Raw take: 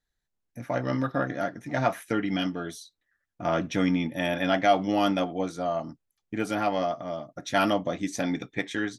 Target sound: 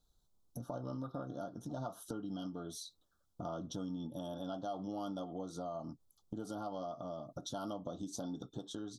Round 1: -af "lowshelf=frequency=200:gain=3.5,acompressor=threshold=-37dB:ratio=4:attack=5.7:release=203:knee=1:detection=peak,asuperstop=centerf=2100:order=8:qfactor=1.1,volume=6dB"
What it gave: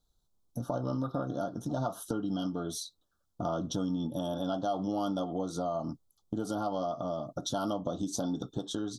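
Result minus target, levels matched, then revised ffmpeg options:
downward compressor: peak gain reduction −9 dB
-af "lowshelf=frequency=200:gain=3.5,acompressor=threshold=-49dB:ratio=4:attack=5.7:release=203:knee=1:detection=peak,asuperstop=centerf=2100:order=8:qfactor=1.1,volume=6dB"

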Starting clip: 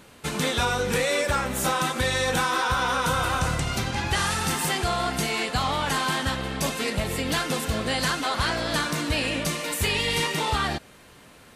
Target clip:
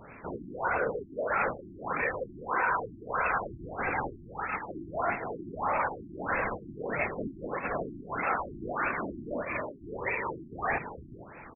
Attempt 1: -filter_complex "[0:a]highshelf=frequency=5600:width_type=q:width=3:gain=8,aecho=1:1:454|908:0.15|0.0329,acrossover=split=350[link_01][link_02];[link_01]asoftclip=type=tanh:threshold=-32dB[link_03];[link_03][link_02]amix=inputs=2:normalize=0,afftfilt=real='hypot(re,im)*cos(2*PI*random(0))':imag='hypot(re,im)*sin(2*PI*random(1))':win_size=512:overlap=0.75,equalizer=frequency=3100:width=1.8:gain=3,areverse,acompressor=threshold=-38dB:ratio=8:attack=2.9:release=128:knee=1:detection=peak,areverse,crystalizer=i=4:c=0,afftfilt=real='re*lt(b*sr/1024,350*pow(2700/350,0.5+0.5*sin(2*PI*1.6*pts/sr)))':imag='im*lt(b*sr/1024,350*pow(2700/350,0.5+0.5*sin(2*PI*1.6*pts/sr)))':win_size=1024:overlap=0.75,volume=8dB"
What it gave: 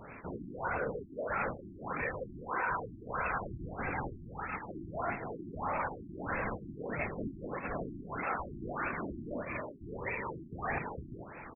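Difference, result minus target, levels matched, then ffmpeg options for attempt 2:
downward compressor: peak gain reduction +5.5 dB; soft clipping: distortion −5 dB
-filter_complex "[0:a]highshelf=frequency=5600:width_type=q:width=3:gain=8,aecho=1:1:454|908:0.15|0.0329,acrossover=split=350[link_01][link_02];[link_01]asoftclip=type=tanh:threshold=-42.5dB[link_03];[link_03][link_02]amix=inputs=2:normalize=0,afftfilt=real='hypot(re,im)*cos(2*PI*random(0))':imag='hypot(re,im)*sin(2*PI*random(1))':win_size=512:overlap=0.75,equalizer=frequency=3100:width=1.8:gain=3,areverse,acompressor=threshold=-31.5dB:ratio=8:attack=2.9:release=128:knee=1:detection=peak,areverse,crystalizer=i=4:c=0,afftfilt=real='re*lt(b*sr/1024,350*pow(2700/350,0.5+0.5*sin(2*PI*1.6*pts/sr)))':imag='im*lt(b*sr/1024,350*pow(2700/350,0.5+0.5*sin(2*PI*1.6*pts/sr)))':win_size=1024:overlap=0.75,volume=8dB"

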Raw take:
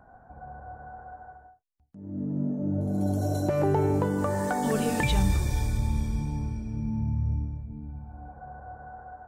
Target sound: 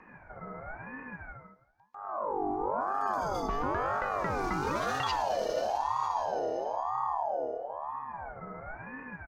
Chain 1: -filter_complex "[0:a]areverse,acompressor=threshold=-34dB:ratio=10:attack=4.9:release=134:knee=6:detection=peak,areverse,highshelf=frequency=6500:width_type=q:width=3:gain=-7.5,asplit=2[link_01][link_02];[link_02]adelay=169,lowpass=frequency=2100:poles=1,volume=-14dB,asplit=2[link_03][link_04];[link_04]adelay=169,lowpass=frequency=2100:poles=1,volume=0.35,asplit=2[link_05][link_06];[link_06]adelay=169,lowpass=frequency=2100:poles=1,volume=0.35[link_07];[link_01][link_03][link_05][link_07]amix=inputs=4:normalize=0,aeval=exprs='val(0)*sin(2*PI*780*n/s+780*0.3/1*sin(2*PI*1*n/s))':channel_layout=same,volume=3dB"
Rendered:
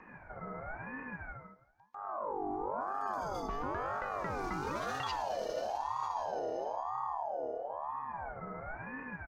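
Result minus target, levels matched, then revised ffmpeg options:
downward compressor: peak gain reduction +6 dB
-filter_complex "[0:a]areverse,acompressor=threshold=-27.5dB:ratio=10:attack=4.9:release=134:knee=6:detection=peak,areverse,highshelf=frequency=6500:width_type=q:width=3:gain=-7.5,asplit=2[link_01][link_02];[link_02]adelay=169,lowpass=frequency=2100:poles=1,volume=-14dB,asplit=2[link_03][link_04];[link_04]adelay=169,lowpass=frequency=2100:poles=1,volume=0.35,asplit=2[link_05][link_06];[link_06]adelay=169,lowpass=frequency=2100:poles=1,volume=0.35[link_07];[link_01][link_03][link_05][link_07]amix=inputs=4:normalize=0,aeval=exprs='val(0)*sin(2*PI*780*n/s+780*0.3/1*sin(2*PI*1*n/s))':channel_layout=same,volume=3dB"

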